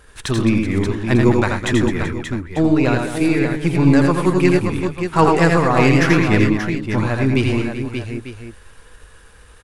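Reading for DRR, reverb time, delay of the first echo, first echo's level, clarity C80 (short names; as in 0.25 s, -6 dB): none, none, 84 ms, -4.5 dB, none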